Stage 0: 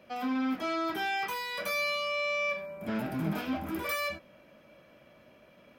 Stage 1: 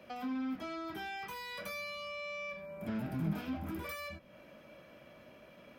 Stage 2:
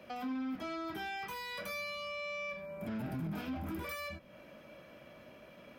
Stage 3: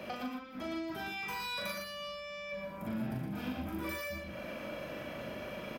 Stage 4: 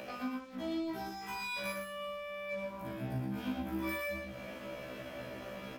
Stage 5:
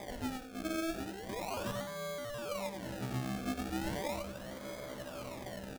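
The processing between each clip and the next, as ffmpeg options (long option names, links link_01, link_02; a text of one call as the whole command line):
ffmpeg -i in.wav -filter_complex "[0:a]acrossover=split=190[link_01][link_02];[link_02]acompressor=threshold=-46dB:ratio=3[link_03];[link_01][link_03]amix=inputs=2:normalize=0,volume=1.5dB" out.wav
ffmpeg -i in.wav -af "alimiter=level_in=9.5dB:limit=-24dB:level=0:latency=1:release=13,volume=-9.5dB,volume=1.5dB" out.wav
ffmpeg -i in.wav -filter_complex "[0:a]acompressor=threshold=-48dB:ratio=10,asplit=2[link_01][link_02];[link_02]adelay=40,volume=-3.5dB[link_03];[link_01][link_03]amix=inputs=2:normalize=0,aecho=1:1:117:0.596,volume=10dB" out.wav
ffmpeg -i in.wav -af "aeval=exprs='sgn(val(0))*max(abs(val(0))-0.00141,0)':channel_layout=same,acompressor=mode=upward:threshold=-44dB:ratio=2.5,afftfilt=real='re*1.73*eq(mod(b,3),0)':imag='im*1.73*eq(mod(b,3),0)':win_size=2048:overlap=0.75,volume=1.5dB" out.wav
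ffmpeg -i in.wav -af "acrusher=samples=31:mix=1:aa=0.000001:lfo=1:lforange=31:lforate=0.37,aecho=1:1:91:0.266" out.wav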